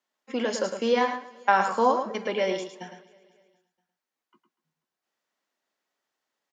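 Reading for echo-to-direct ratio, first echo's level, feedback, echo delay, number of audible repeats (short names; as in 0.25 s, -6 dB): -7.5 dB, -7.5 dB, no steady repeat, 0.108 s, 5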